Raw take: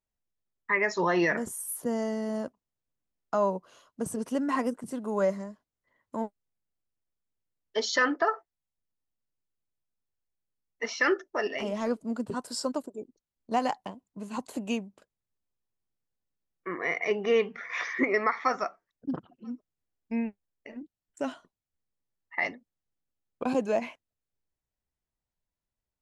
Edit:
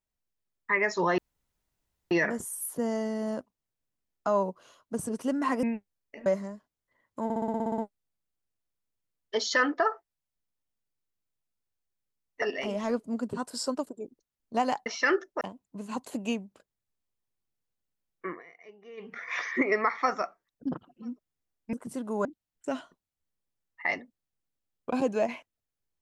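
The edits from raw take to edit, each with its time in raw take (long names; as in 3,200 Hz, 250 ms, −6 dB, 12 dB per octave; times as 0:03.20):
0:01.18: splice in room tone 0.93 s
0:04.70–0:05.22: swap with 0:20.15–0:20.78
0:06.20: stutter 0.06 s, 10 plays
0:10.84–0:11.39: move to 0:13.83
0:16.68–0:17.56: duck −23.5 dB, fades 0.17 s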